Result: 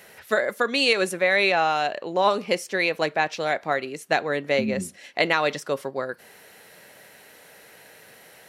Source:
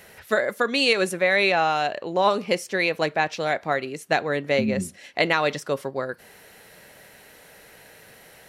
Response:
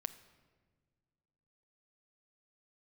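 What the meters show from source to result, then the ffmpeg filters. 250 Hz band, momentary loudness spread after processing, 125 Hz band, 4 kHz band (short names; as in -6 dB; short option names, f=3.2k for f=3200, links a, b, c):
-2.0 dB, 10 LU, -3.5 dB, 0.0 dB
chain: -af "highpass=f=180:p=1"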